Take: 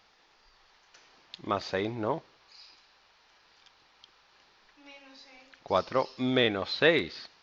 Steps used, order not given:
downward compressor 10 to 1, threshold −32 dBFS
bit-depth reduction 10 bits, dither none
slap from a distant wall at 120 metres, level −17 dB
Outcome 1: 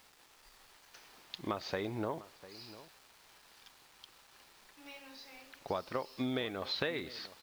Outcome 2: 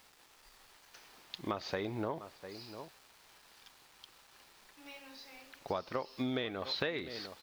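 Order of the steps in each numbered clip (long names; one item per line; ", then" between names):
downward compressor, then bit-depth reduction, then slap from a distant wall
bit-depth reduction, then slap from a distant wall, then downward compressor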